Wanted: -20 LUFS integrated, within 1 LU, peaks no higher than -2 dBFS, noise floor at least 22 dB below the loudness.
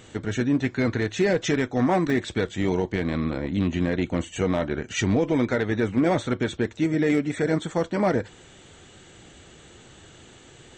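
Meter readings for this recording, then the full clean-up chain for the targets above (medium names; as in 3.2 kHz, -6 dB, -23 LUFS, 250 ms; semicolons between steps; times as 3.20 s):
clipped samples 0.4%; clipping level -14.0 dBFS; dropouts 1; longest dropout 2.0 ms; loudness -24.5 LUFS; peak level -14.0 dBFS; loudness target -20.0 LUFS
-> clip repair -14 dBFS; interpolate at 2.10 s, 2 ms; trim +4.5 dB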